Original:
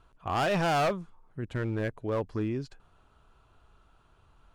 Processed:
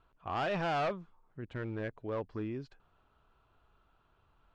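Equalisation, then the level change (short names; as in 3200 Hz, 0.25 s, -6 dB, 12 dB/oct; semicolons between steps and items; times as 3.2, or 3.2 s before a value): LPF 4000 Hz 12 dB/oct; low shelf 190 Hz -4 dB; -5.5 dB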